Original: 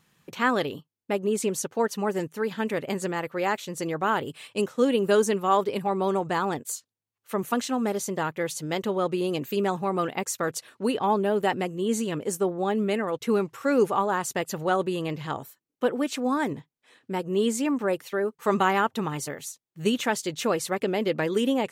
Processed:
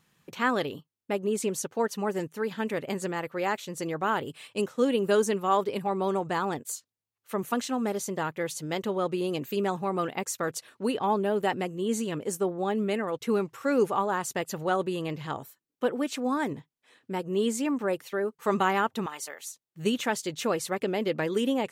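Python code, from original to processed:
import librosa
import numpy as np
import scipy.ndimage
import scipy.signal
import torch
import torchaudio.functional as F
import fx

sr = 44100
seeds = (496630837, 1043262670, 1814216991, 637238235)

y = fx.highpass(x, sr, hz=690.0, slope=12, at=(19.06, 19.47))
y = F.gain(torch.from_numpy(y), -2.5).numpy()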